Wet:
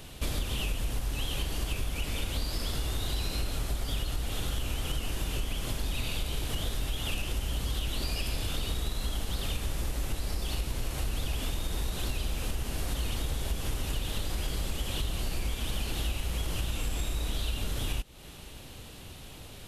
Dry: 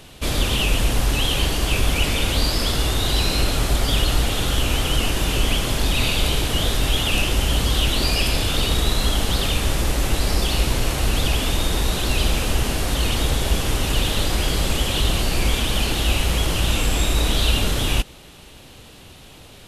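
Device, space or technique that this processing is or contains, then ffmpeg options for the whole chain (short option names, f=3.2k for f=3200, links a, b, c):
ASMR close-microphone chain: -af "lowshelf=f=130:g=5.5,acompressor=threshold=-24dB:ratio=6,highshelf=f=11k:g=7,volume=-4.5dB"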